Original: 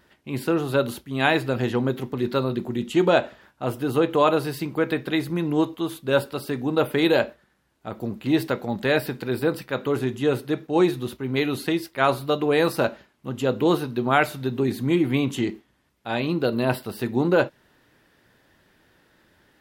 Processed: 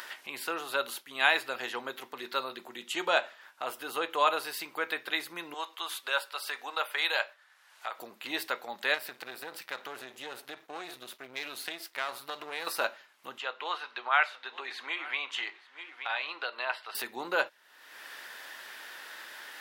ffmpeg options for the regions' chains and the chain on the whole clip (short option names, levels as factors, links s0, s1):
-filter_complex "[0:a]asettb=1/sr,asplit=3[s0][s1][s2];[s0]atrim=end=5.544[s3];[s1]atrim=start=5.54:end=7.99,asetpts=PTS-STARTPTS,afade=t=in:d=0.004:c=qsin,afade=t=out:st=2.446:d=0.004:c=qsin,highpass=690,highshelf=f=11000:g=-8.5[s4];[s2]atrim=start=7.986[s5];[s3][s4]acrossfade=d=0.004:c1=hsin:c2=qsin[s6];[s6][s5]acrossfade=d=0.004:c1=qsin:c2=hsin,asettb=1/sr,asplit=3[s7][s8][s9];[s7]atrim=end=8.944[s10];[s8]atrim=start=8.94:end=12.67,asetpts=PTS-STARTPTS,afade=t=in:d=0.004:c=qsin,afade=t=out:st=3.726:d=0.004:c=qsin,aeval=exprs='if(lt(val(0),0),0.251*val(0),val(0))':c=same,lowshelf=f=170:g=8.5,acompressor=threshold=0.0891:ratio=5:attack=3.2:release=140:knee=1:detection=peak[s11];[s9]atrim=start=12.666[s12];[s10][s11]acrossfade=d=0.004:c1=hsin:c2=qsin[s13];[s13][s12]acrossfade=d=0.004:c1=qsin:c2=hsin,asettb=1/sr,asplit=3[s14][s15][s16];[s14]atrim=end=13.384[s17];[s15]atrim=start=13.38:end=16.95,asetpts=PTS-STARTPTS,afade=t=in:d=0.004:c=qsin,afade=t=out:st=3.566:d=0.004:c=qsin,highpass=790,lowpass=3200,aecho=1:1:878:0.0668,atrim=end_sample=157437[s18];[s16]atrim=start=16.946[s19];[s17][s18]acrossfade=d=0.004:c1=hsin:c2=qsin[s20];[s20][s19]acrossfade=d=0.004:c1=qsin:c2=hsin,acompressor=mode=upward:threshold=0.0631:ratio=2.5,highpass=1000,volume=0.891"